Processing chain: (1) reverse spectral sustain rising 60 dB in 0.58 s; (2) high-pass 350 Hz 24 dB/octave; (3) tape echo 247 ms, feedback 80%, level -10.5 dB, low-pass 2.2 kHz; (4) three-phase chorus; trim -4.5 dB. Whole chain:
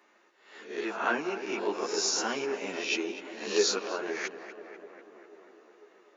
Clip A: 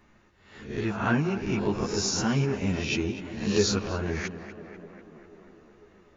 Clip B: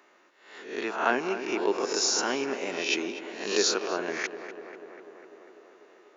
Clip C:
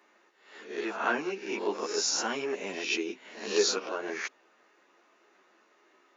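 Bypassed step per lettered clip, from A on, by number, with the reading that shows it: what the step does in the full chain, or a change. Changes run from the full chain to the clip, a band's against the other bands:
2, 250 Hz band +9.5 dB; 4, loudness change +2.5 LU; 3, momentary loudness spread change -7 LU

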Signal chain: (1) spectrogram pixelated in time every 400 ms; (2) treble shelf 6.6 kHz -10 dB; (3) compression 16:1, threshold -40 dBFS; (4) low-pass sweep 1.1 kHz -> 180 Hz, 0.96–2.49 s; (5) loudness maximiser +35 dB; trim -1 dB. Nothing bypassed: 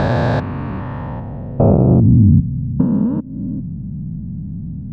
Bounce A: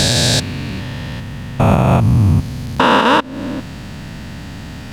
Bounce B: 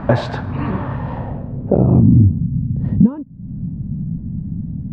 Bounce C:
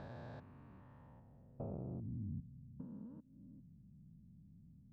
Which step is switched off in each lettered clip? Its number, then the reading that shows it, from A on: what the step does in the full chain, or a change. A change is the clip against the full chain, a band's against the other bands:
4, 1 kHz band +11.5 dB; 1, momentary loudness spread change -1 LU; 5, crest factor change +4.0 dB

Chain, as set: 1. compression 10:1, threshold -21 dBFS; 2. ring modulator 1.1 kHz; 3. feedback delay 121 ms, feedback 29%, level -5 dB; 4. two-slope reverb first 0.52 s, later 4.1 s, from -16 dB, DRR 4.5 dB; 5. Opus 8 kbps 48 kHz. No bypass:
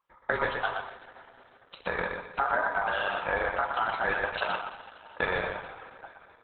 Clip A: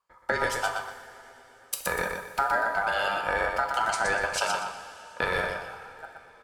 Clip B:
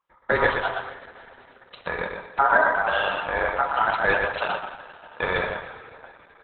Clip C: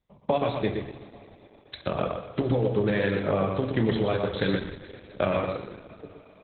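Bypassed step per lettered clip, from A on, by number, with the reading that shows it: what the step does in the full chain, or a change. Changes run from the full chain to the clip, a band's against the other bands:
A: 5, 4 kHz band +3.5 dB; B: 1, mean gain reduction 3.5 dB; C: 2, momentary loudness spread change +1 LU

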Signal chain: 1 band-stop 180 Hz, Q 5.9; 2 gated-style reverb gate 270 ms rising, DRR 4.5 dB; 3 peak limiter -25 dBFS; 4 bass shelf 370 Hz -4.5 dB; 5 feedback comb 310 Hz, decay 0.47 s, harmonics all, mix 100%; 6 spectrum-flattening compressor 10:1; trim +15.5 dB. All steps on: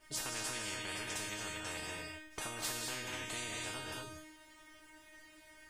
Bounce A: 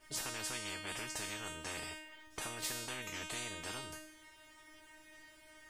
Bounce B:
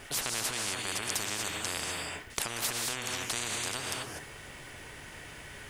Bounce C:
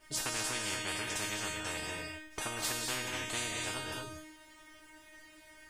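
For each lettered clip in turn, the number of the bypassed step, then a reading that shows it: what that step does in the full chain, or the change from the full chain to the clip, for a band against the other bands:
2, crest factor change +1.5 dB; 5, 8 kHz band +2.5 dB; 3, mean gain reduction 2.0 dB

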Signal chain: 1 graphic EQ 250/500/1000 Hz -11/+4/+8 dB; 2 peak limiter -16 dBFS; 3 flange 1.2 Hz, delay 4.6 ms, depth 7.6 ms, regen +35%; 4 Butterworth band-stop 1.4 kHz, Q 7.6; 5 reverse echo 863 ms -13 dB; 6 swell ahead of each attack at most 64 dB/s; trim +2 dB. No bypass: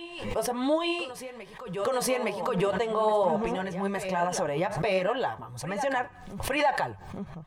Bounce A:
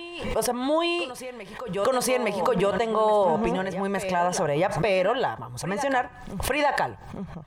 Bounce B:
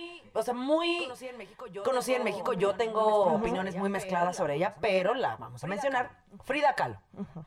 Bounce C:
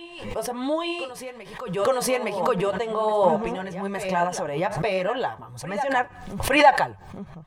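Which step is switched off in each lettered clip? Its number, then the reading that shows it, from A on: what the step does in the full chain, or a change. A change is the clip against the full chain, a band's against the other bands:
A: 3, loudness change +3.5 LU; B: 6, 8 kHz band -6.0 dB; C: 2, crest factor change +6.5 dB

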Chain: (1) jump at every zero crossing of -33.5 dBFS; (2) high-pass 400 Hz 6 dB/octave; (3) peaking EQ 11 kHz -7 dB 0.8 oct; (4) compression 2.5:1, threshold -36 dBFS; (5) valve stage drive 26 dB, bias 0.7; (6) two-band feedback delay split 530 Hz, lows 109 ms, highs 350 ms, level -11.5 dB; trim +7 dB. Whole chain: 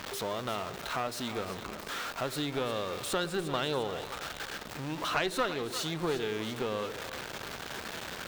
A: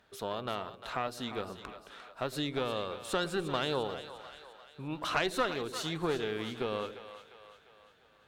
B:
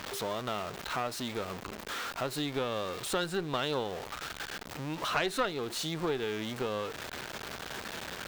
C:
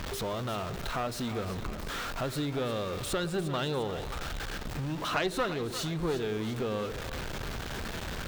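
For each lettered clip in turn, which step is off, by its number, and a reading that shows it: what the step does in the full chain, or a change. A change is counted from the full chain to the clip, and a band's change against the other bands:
1, distortion -12 dB; 6, echo-to-direct -10.0 dB to none; 2, 125 Hz band +7.0 dB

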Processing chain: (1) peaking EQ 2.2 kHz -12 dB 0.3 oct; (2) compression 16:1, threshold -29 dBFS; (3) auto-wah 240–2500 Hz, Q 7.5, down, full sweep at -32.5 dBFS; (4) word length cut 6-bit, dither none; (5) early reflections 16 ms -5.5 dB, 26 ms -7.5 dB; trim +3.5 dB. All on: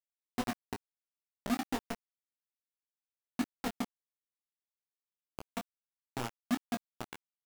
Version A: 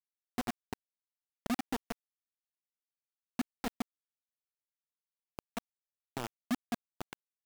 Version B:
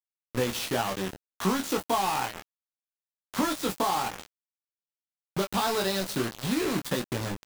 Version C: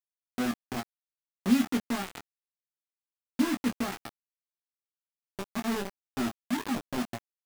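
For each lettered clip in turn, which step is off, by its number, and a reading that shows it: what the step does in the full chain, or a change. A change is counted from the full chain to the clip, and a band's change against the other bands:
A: 5, echo-to-direct -3.5 dB to none; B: 3, momentary loudness spread change -3 LU; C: 2, mean gain reduction 6.0 dB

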